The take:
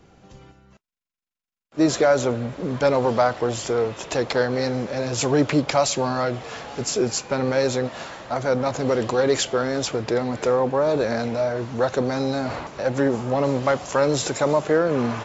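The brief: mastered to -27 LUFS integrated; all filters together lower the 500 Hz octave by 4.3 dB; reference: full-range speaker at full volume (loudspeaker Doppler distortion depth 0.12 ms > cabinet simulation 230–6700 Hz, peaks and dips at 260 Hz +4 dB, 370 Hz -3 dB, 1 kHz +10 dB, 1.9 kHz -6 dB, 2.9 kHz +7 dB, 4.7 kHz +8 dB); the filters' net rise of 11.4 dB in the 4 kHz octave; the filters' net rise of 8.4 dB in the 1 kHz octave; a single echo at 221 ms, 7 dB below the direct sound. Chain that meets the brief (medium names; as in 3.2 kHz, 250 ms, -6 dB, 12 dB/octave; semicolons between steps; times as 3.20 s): peaking EQ 500 Hz -6.5 dB; peaking EQ 1 kHz +6 dB; peaking EQ 4 kHz +7.5 dB; delay 221 ms -7 dB; loudspeaker Doppler distortion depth 0.12 ms; cabinet simulation 230–6700 Hz, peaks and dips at 260 Hz +4 dB, 370 Hz -3 dB, 1 kHz +10 dB, 1.9 kHz -6 dB, 2.9 kHz +7 dB, 4.7 kHz +8 dB; trim -7.5 dB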